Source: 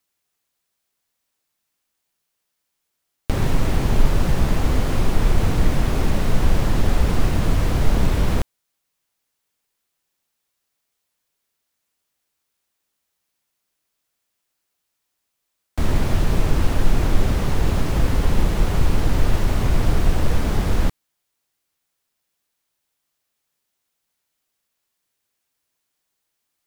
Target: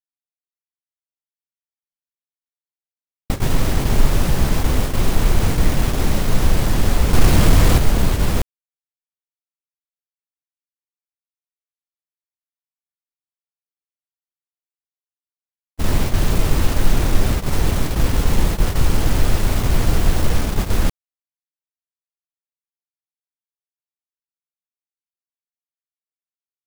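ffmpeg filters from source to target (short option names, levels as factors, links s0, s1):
-filter_complex "[0:a]acrusher=bits=4:mix=0:aa=0.000001,asettb=1/sr,asplit=3[s0][s1][s2];[s0]atrim=end=7.134[s3];[s1]atrim=start=7.13:end=7.78,asetpts=PTS-STARTPTS,afade=t=in:d=0.004:c=qsin,afade=t=out:st=0.646:d=0.004:c=qsin,acontrast=53[s4];[s2]atrim=start=7.776[s5];[s3][s4]acrossfade=d=0.004:c1=hsin:c2=qsin[s6];[s6][s5]acrossfade=d=0.004:c1=qsin:c2=hsin,agate=range=0.0224:threshold=0.126:ratio=16:detection=peak,volume=1.19"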